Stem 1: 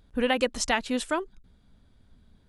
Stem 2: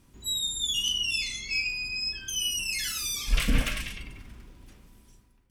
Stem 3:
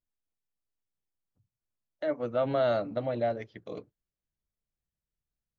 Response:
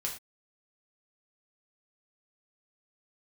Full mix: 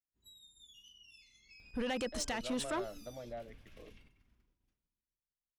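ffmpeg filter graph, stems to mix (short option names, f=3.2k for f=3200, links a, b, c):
-filter_complex "[0:a]adelay=1600,volume=-3dB[a];[1:a]equalizer=f=8.5k:w=4.9:g=-12,acompressor=threshold=-40dB:ratio=5,volume=-17.5dB[b];[2:a]adelay=100,volume=-15.5dB[c];[a][b]amix=inputs=2:normalize=0,agate=range=-33dB:threshold=-56dB:ratio=3:detection=peak,alimiter=limit=-23.5dB:level=0:latency=1:release=24,volume=0dB[d];[c][d]amix=inputs=2:normalize=0,asoftclip=type=tanh:threshold=-30dB"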